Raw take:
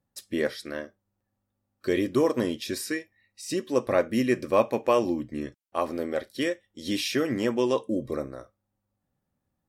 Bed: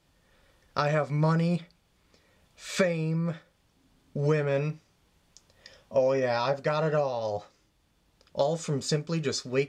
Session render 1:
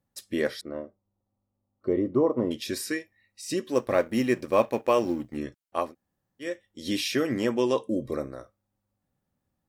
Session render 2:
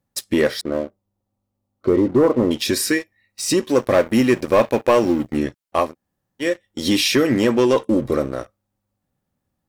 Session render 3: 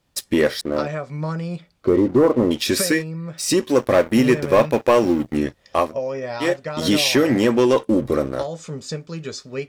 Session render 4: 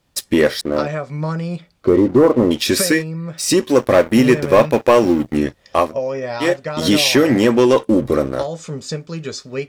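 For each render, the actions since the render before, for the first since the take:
0.61–2.51 polynomial smoothing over 65 samples; 3.7–5.37 G.711 law mismatch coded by A; 5.87–6.47 room tone, crossfade 0.16 s
in parallel at +2.5 dB: compressor 4:1, threshold -35 dBFS, peak gain reduction 16 dB; on the sum: sample leveller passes 2
add bed -1.5 dB
gain +3.5 dB

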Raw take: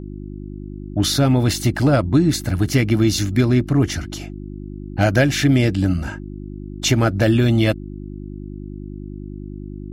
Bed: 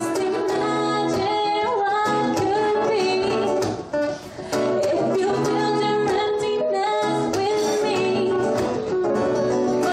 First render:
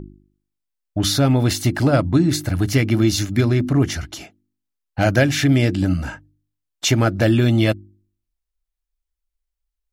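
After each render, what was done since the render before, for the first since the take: de-hum 50 Hz, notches 7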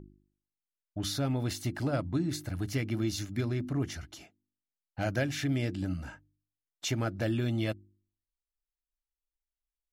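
gain -14.5 dB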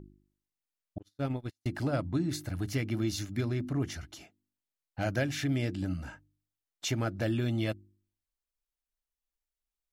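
0.98–1.66 gate -30 dBFS, range -48 dB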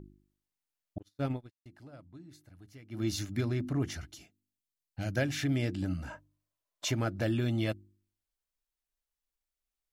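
1.31–3.07 dip -20.5 dB, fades 0.18 s; 4.1–5.17 bell 920 Hz -11 dB 2.5 oct; 6.1–6.91 small resonant body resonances 610/1000 Hz, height 14 dB, ringing for 30 ms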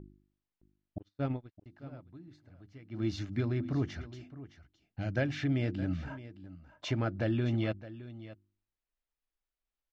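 air absorption 200 m; echo 0.615 s -15.5 dB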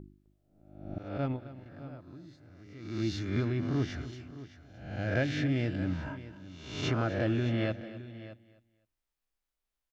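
spectral swells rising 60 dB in 0.81 s; feedback echo 0.258 s, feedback 25%, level -16 dB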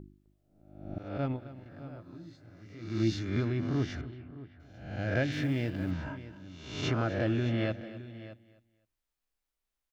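1.94–3.15 doubler 18 ms -4 dB; 4.01–4.6 air absorption 440 m; 5.32–5.91 G.711 law mismatch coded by A

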